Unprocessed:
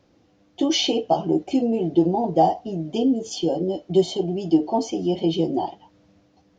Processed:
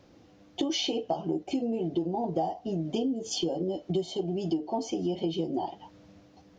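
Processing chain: compressor 5:1, threshold -31 dBFS, peak gain reduction 17 dB; gain +3 dB

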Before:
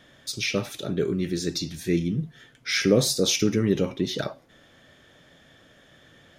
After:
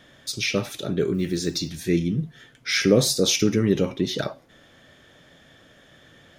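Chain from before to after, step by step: 1.14–1.7 block floating point 7-bit; gain +2 dB

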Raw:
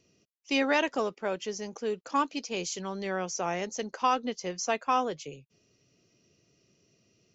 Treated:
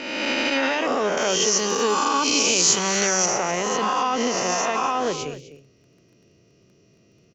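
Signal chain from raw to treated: spectral swells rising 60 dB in 1.69 s; crackle 17/s -49 dBFS; limiter -22 dBFS, peak gain reduction 10.5 dB; 1.17–3.26 high shelf 3500 Hz +11.5 dB; echo 0.253 s -13 dB; mismatched tape noise reduction decoder only; gain +8 dB

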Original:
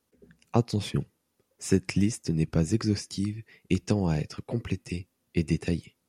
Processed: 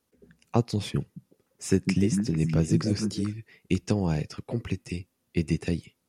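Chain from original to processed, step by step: 1.01–3.33 delay with a stepping band-pass 0.151 s, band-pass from 180 Hz, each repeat 1.4 oct, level -0.5 dB

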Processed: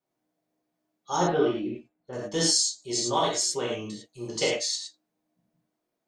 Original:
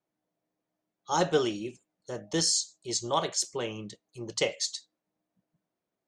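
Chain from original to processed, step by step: 1.16–2.13 air absorption 420 m; non-linear reverb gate 0.13 s flat, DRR -5.5 dB; gain -3 dB

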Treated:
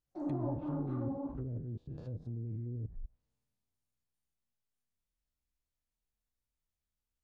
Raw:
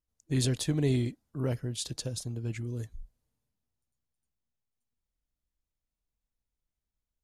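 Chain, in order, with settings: stepped spectrum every 0.1 s; sample leveller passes 1; reverse; compressor 4:1, threshold -38 dBFS, peak gain reduction 13 dB; reverse; treble ducked by the level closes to 350 Hz, closed at -36 dBFS; on a send at -1 dB: speed mistake 33 rpm record played at 78 rpm + reverb, pre-delay 24 ms

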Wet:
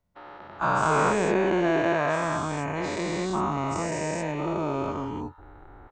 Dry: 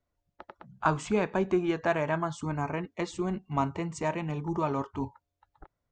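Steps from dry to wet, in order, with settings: spectral dilation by 0.48 s; 3.5–4.88 bell 1100 Hz -5.5 dB 0.84 oct; gain -4 dB

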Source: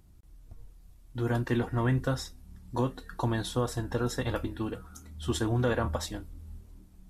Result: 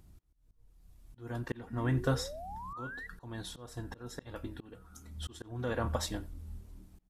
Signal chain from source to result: auto swell 0.612 s; painted sound rise, 1.7–3.07, 220–2000 Hz -44 dBFS; speakerphone echo 90 ms, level -20 dB

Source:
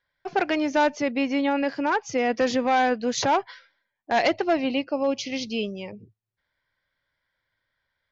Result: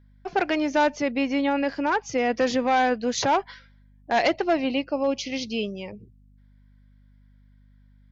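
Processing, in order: hum 50 Hz, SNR 29 dB

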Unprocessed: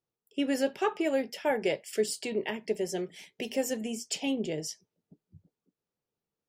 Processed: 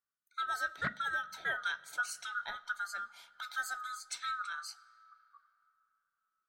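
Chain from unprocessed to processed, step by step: band-swap scrambler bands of 1000 Hz; on a send at -20 dB: reverb RT60 3.7 s, pre-delay 20 ms; on the sum: Doppler distortion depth 0.24 ms; gain -7.5 dB

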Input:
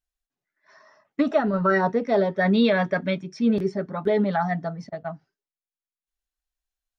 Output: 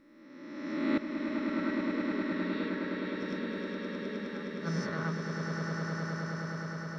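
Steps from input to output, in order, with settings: spectral swells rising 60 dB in 1.60 s; flipped gate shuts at -16 dBFS, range -24 dB; Butterworth band-stop 720 Hz, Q 1.7; on a send: swelling echo 0.104 s, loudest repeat 8, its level -7 dB

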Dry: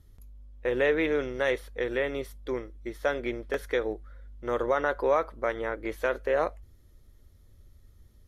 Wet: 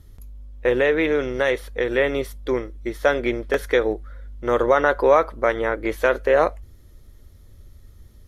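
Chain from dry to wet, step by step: 0.72–1.98 compressor 1.5:1, threshold -30 dBFS, peak gain reduction 4 dB; gain +9 dB

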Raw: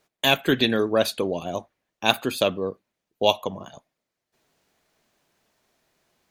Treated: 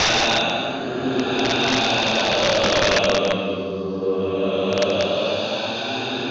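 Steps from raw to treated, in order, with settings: regenerating reverse delay 0.369 s, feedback 42%, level -4.5 dB; Paulstretch 8.1×, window 0.25 s, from 2.1; wrapped overs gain 14 dB; steep low-pass 6300 Hz 72 dB/oct; gain +3.5 dB

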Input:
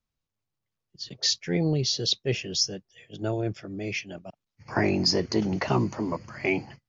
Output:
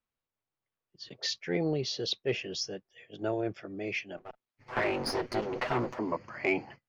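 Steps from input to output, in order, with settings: 4.17–5.99 minimum comb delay 8 ms; tone controls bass -11 dB, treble -14 dB; soft clip -14.5 dBFS, distortion -28 dB

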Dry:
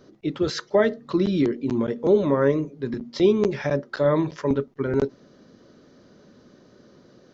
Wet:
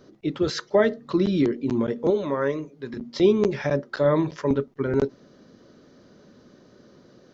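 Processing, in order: 2.1–2.97 low shelf 500 Hz -9 dB

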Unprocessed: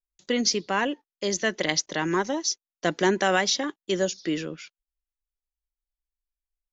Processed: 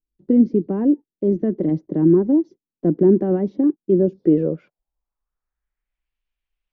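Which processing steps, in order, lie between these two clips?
bell 150 Hz +5.5 dB 0.89 oct; in parallel at +2 dB: limiter -16.5 dBFS, peak gain reduction 8 dB; on the sum: low-pass sweep 320 Hz -> 2800 Hz, 3.96–6.14

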